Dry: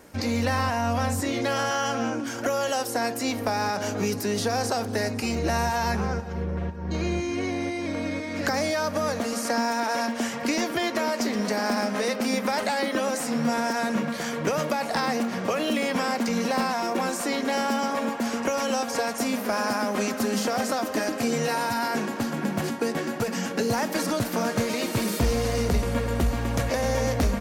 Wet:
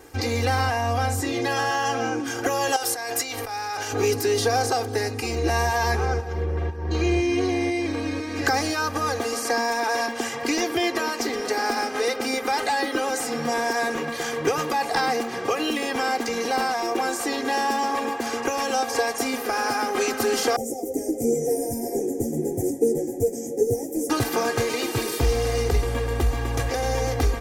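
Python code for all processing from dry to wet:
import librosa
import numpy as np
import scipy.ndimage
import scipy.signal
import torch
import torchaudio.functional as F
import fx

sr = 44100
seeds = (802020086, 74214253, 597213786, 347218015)

y = fx.chain(x, sr, fx.over_compress(threshold_db=-31.0, ratio=-1.0),
    fx.peak_eq(hz=190.0, db=-13.5, octaves=2.8), at=(2.76, 3.93))
y = fx.chain(y, sr, fx.cheby2_bandstop(low_hz=1000.0, high_hz=4200.0, order=4, stop_db=40),
    fx.band_shelf(hz=2300.0, db=15.5, octaves=1.2),
    fx.ensemble(), at=(20.56, 24.1))
y = y + 0.95 * np.pad(y, (int(2.5 * sr / 1000.0), 0))[:len(y)]
y = fx.rider(y, sr, range_db=10, speed_s=2.0)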